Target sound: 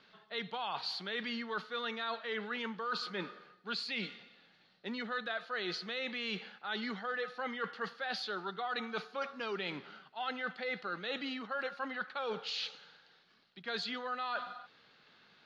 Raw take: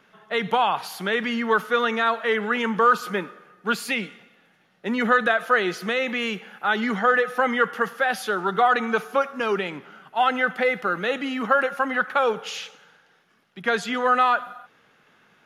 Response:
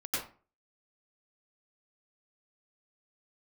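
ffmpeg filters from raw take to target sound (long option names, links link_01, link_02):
-af "lowpass=frequency=4300:width_type=q:width=6.8,areverse,acompressor=threshold=-28dB:ratio=6,areverse,volume=-7.5dB"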